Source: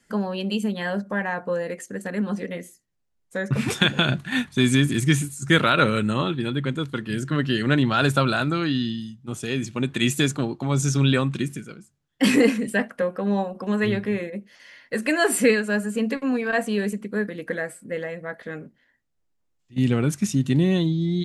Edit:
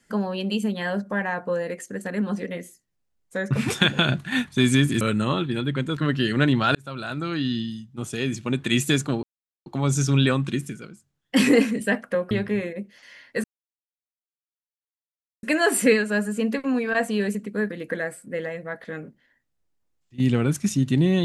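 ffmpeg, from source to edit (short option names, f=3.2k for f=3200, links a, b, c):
-filter_complex "[0:a]asplit=7[a][b][c][d][e][f][g];[a]atrim=end=5.012[h];[b]atrim=start=5.898:end=6.862[i];[c]atrim=start=7.268:end=8.05,asetpts=PTS-STARTPTS,afade=t=out:st=0.778:d=0.004:c=hsin[j];[d]atrim=start=8.05:end=10.53,asetpts=PTS-STARTPTS,afade=t=in:d=0.85,afade=t=out:st=2.476:d=0.004:c=hsin,apad=pad_dur=0.43[k];[e]atrim=start=10.53:end=13.182,asetpts=PTS-STARTPTS,afade=t=in:d=0.004:c=hsin[l];[f]atrim=start=13.878:end=15.01,asetpts=PTS-STARTPTS,afade=t=out:st=1.128:d=0.004:c=hsin,apad=pad_dur=1.99[m];[g]atrim=start=15.01,asetpts=PTS-STARTPTS,afade=t=in:d=0.004:c=hsin[n];[h][i]acrossfade=d=0.004:c1=hsin:c2=hsin[o];[j][k][l]concat=n=3:v=0:a=1[p];[o][p]acrossfade=d=0.004:c1=hsin:c2=hsin[q];[m][n]concat=n=2:v=0:a=1[r];[q][r]acrossfade=d=0.004:c1=hsin:c2=hsin"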